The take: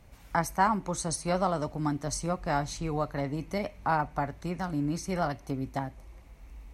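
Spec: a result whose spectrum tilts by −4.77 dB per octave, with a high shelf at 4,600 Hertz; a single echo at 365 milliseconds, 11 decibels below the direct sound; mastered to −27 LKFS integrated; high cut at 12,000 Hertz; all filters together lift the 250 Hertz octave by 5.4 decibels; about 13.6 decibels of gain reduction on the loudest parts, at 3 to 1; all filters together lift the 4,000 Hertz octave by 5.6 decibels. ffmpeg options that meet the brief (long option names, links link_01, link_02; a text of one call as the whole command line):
ffmpeg -i in.wav -af "lowpass=12000,equalizer=frequency=250:width_type=o:gain=7.5,equalizer=frequency=4000:width_type=o:gain=3.5,highshelf=frequency=4600:gain=6,acompressor=threshold=-39dB:ratio=3,aecho=1:1:365:0.282,volume=12.5dB" out.wav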